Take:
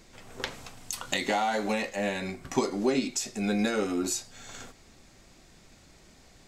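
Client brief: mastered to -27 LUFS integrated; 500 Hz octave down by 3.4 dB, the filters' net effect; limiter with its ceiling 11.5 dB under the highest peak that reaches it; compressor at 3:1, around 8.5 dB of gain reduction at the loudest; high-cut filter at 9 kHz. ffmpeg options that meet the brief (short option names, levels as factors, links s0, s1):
-af "lowpass=9000,equalizer=f=500:t=o:g=-4.5,acompressor=threshold=0.0178:ratio=3,volume=4.22,alimiter=limit=0.168:level=0:latency=1"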